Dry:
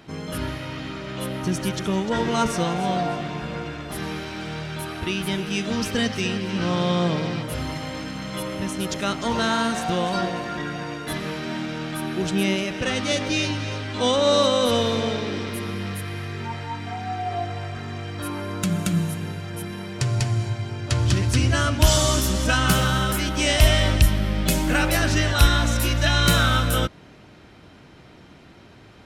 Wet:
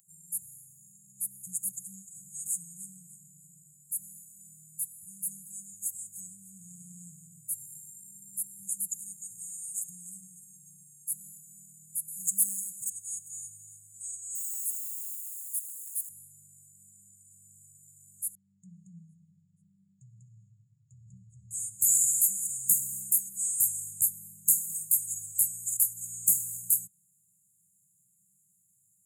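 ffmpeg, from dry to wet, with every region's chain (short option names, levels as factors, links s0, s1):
-filter_complex "[0:a]asettb=1/sr,asplit=3[s0][s1][s2];[s0]atrim=end=12.084[s3];[s1]atrim=start=12.08:end=12.9,asetpts=PTS-STARTPTS,afade=t=in:d=0.004:c=qsin,afade=t=out:st=0.816:d=0.004:c=qsin,highshelf=f=3700:g=10.5,volume=7.08,asoftclip=hard,volume=0.141[s4];[s2]atrim=start=12.896[s5];[s3][s4]acrossfade=d=0.004:c1=hsin:c2=qsin[s6];[s6][s5]acrossfade=d=0.004:c1=qsin:c2=hsin,asettb=1/sr,asplit=3[s7][s8][s9];[s7]atrim=end=14.354[s10];[s8]atrim=start=14.35:end=16.09,asetpts=PTS-STARTPTS,afade=t=in:d=0.004:c=qsin,afade=t=out:st=1.736:d=0.004:c=qsin,highpass=530,acrusher=bits=5:mix=0:aa=0.5[s11];[s9]atrim=start=16.086[s12];[s10][s11]acrossfade=d=0.004:c1=hsin:c2=qsin[s13];[s13][s12]acrossfade=d=0.004:c1=qsin:c2=hsin,asettb=1/sr,asplit=3[s14][s15][s16];[s14]atrim=end=18.354[s17];[s15]atrim=start=18.35:end=21.51,asetpts=PTS-STARTPTS,afade=t=in:d=0.004:c=qsin,afade=t=out:st=3.156:d=0.004:c=qsin,lowpass=f=2800:w=0.5412,lowpass=f=2800:w=1.3066,bandreject=f=50:t=h:w=6,bandreject=f=100:t=h:w=6,bandreject=f=150:t=h:w=6,bandreject=f=200:t=h:w=6,bandreject=f=250:t=h:w=6,bandreject=f=300:t=h:w=6,bandreject=f=350:t=h:w=6,bandreject=f=400:t=h:w=6[s18];[s16]atrim=start=21.506[s19];[s17][s18]acrossfade=d=0.004:c1=hsin:c2=qsin[s20];[s20][s19]acrossfade=d=0.004:c1=qsin:c2=hsin,highpass=f=98:w=0.5412,highpass=f=98:w=1.3066,afftfilt=real='re*(1-between(b*sr/4096,200,6600))':imag='im*(1-between(b*sr/4096,200,6600))':win_size=4096:overlap=0.75,aderivative,volume=1.68"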